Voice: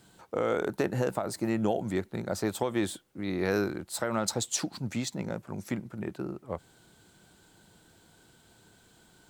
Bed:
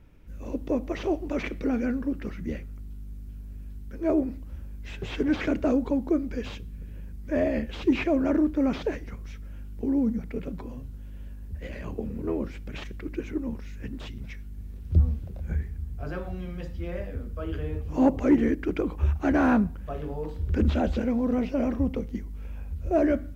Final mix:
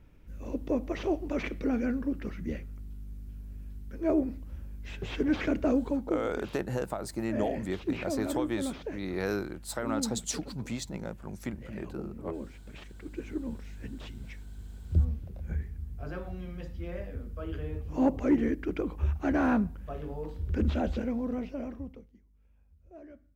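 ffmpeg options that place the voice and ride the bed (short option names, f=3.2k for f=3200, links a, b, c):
-filter_complex "[0:a]adelay=5750,volume=-3.5dB[a];[1:a]volume=2.5dB,afade=t=out:st=5.77:d=0.45:silence=0.446684,afade=t=in:st=12.92:d=0.43:silence=0.562341,afade=t=out:st=20.93:d=1.2:silence=0.0749894[b];[a][b]amix=inputs=2:normalize=0"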